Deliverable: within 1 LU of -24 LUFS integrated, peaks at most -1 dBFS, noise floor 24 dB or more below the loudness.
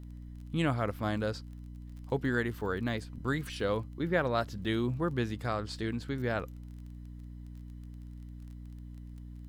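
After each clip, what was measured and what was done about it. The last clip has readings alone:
ticks 23/s; hum 60 Hz; harmonics up to 300 Hz; hum level -42 dBFS; loudness -33.0 LUFS; peak -15.0 dBFS; loudness target -24.0 LUFS
-> de-click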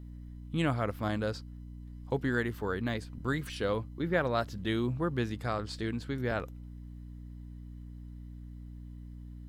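ticks 0/s; hum 60 Hz; harmonics up to 300 Hz; hum level -42 dBFS
-> notches 60/120/180/240/300 Hz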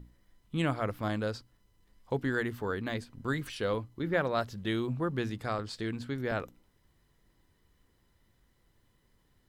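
hum none; loudness -33.5 LUFS; peak -15.0 dBFS; loudness target -24.0 LUFS
-> gain +9.5 dB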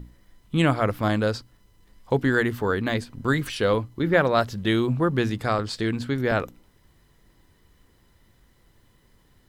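loudness -24.0 LUFS; peak -5.5 dBFS; noise floor -61 dBFS

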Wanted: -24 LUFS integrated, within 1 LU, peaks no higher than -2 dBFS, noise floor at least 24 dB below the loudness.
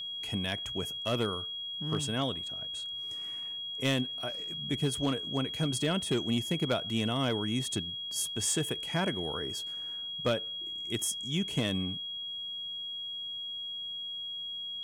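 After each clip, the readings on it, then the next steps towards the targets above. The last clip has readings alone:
clipped 0.4%; flat tops at -22.0 dBFS; steady tone 3300 Hz; tone level -36 dBFS; loudness -32.5 LUFS; peak -22.0 dBFS; loudness target -24.0 LUFS
-> clip repair -22 dBFS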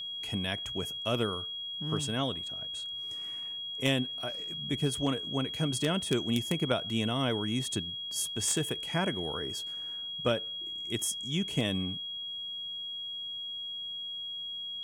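clipped 0.0%; steady tone 3300 Hz; tone level -36 dBFS
-> notch 3300 Hz, Q 30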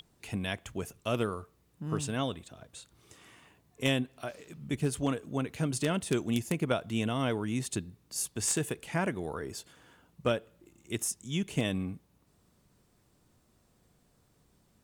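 steady tone none; loudness -33.0 LUFS; peak -12.0 dBFS; loudness target -24.0 LUFS
-> gain +9 dB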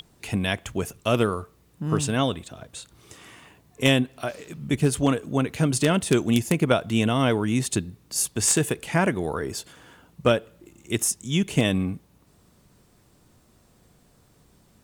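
loudness -24.0 LUFS; peak -3.0 dBFS; noise floor -60 dBFS

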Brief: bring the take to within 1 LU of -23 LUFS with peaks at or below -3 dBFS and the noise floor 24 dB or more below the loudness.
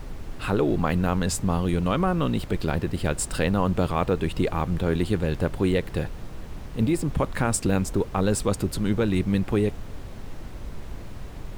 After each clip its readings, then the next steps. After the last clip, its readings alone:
noise floor -38 dBFS; noise floor target -49 dBFS; loudness -25.0 LUFS; peak -10.0 dBFS; loudness target -23.0 LUFS
-> noise print and reduce 11 dB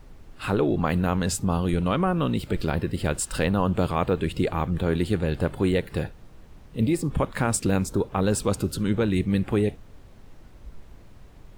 noise floor -48 dBFS; noise floor target -50 dBFS
-> noise print and reduce 6 dB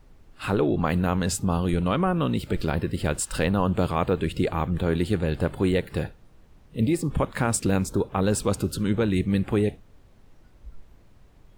noise floor -54 dBFS; loudness -25.5 LUFS; peak -10.5 dBFS; loudness target -23.0 LUFS
-> gain +2.5 dB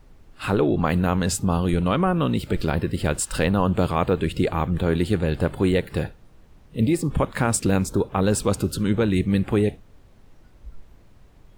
loudness -23.0 LUFS; peak -8.0 dBFS; noise floor -52 dBFS

